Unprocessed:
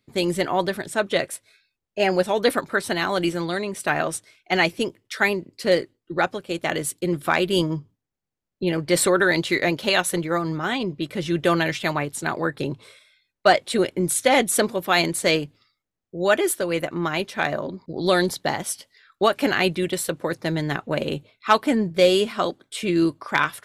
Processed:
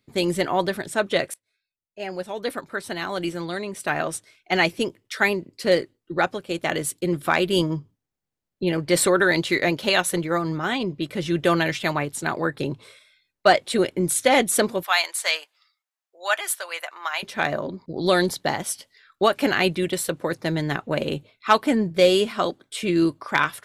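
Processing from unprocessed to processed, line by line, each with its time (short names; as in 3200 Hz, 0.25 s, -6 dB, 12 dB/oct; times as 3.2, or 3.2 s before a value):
1.34–4.71 fade in, from -23.5 dB
14.83–17.23 HPF 780 Hz 24 dB/oct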